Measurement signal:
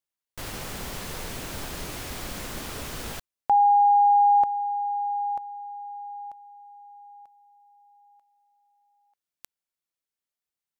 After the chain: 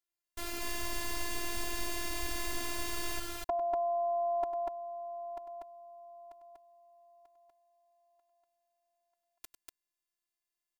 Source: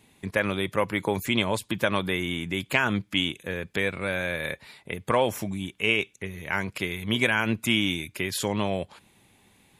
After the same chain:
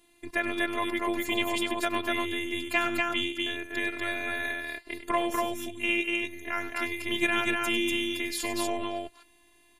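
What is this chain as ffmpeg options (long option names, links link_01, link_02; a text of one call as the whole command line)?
ffmpeg -i in.wav -af "afftfilt=real='hypot(re,im)*cos(PI*b)':imag='0':win_size=512:overlap=0.75,aecho=1:1:99.13|242:0.282|0.794" out.wav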